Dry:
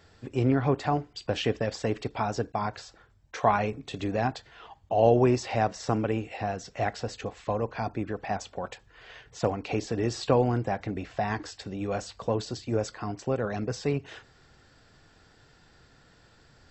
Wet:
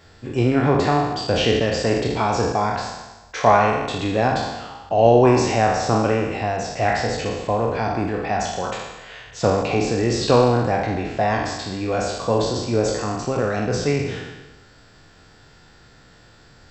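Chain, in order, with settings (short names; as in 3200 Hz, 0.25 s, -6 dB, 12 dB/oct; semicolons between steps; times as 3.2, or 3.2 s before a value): spectral trails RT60 1.16 s; de-hum 66.5 Hz, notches 29; gain +6 dB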